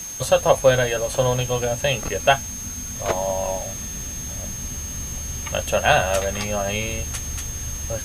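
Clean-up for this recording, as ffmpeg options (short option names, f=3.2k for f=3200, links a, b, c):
-af "adeclick=t=4,bandreject=f=6.4k:w=30,afwtdn=0.01"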